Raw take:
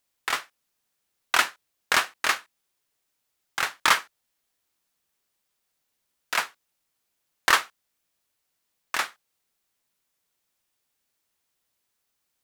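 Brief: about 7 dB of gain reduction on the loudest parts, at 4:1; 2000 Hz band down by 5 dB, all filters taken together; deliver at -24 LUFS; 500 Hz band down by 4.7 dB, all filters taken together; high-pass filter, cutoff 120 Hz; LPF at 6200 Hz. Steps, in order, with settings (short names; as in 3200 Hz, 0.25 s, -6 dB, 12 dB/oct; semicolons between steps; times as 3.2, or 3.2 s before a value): HPF 120 Hz; LPF 6200 Hz; bell 500 Hz -6 dB; bell 2000 Hz -6 dB; compressor 4:1, threshold -26 dBFS; gain +10 dB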